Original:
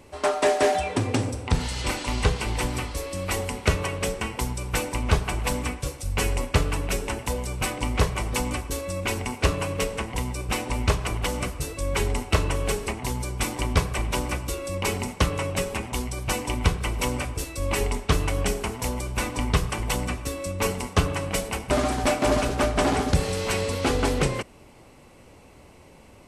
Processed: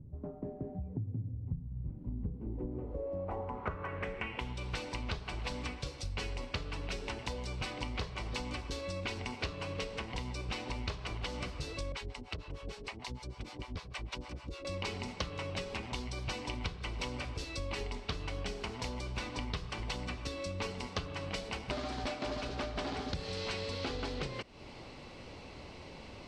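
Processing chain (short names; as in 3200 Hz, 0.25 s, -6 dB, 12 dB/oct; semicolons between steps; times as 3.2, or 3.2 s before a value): low-pass sweep 150 Hz -> 4400 Hz, 1.93–4.76; compressor 5:1, threshold -38 dBFS, peak gain reduction 21.5 dB; 11.92–14.65 harmonic tremolo 6.6 Hz, depth 100%, crossover 560 Hz; gain +1 dB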